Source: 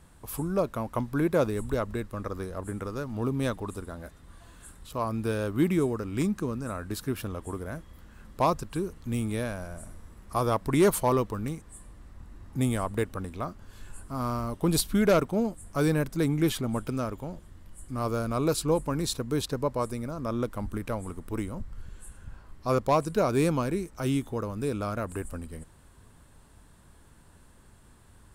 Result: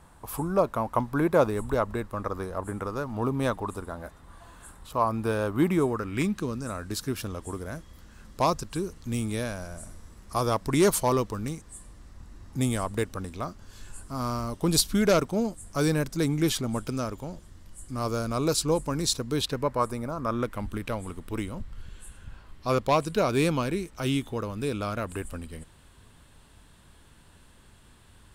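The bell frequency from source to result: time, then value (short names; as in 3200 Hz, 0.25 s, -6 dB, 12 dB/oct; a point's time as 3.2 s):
bell +8 dB 1.3 oct
5.83 s 910 Hz
6.58 s 5700 Hz
19.19 s 5700 Hz
20.03 s 780 Hz
20.7 s 3200 Hz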